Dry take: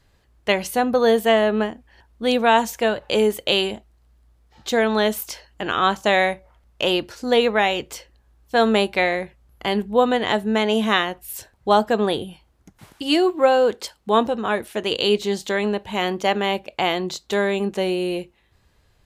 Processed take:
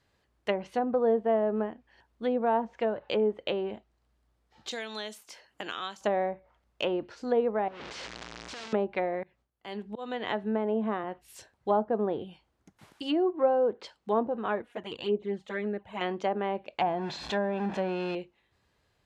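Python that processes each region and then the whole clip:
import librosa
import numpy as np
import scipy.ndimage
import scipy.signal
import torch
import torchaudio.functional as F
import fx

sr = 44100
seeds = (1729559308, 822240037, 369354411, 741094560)

y = fx.chain(x, sr, fx.highpass(hz=91.0, slope=12),
    fx.pre_emphasis(coefficient=0.8),
    fx.band_squash(depth_pct=100), at=(4.71, 6.01))
y = fx.chain(y, sr, fx.clip_1bit(),
    fx.lowpass(hz=5400.0, slope=24),
    fx.spectral_comp(ratio=2.0), at=(7.68, 8.73))
y = fx.chain(y, sr, fx.gate_hold(open_db=-47.0, close_db=-50.0, hold_ms=71.0, range_db=-21, attack_ms=1.4, release_ms=100.0),
    fx.auto_swell(attack_ms=639.0),
    fx.band_squash(depth_pct=40), at=(9.23, 11.04))
y = fx.chain(y, sr, fx.peak_eq(hz=4900.0, db=-13.5, octaves=1.3),
    fx.env_flanger(rest_ms=4.8, full_db=-16.5), at=(14.62, 16.01))
y = fx.chain(y, sr, fx.zero_step(step_db=-23.5),
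    fx.low_shelf(hz=74.0, db=-9.5),
    fx.comb(ms=1.2, depth=0.56), at=(16.81, 18.15))
y = fx.env_lowpass_down(y, sr, base_hz=820.0, full_db=-15.5)
y = fx.highpass(y, sr, hz=160.0, slope=6)
y = fx.high_shelf(y, sr, hz=8700.0, db=-8.0)
y = y * librosa.db_to_amplitude(-7.0)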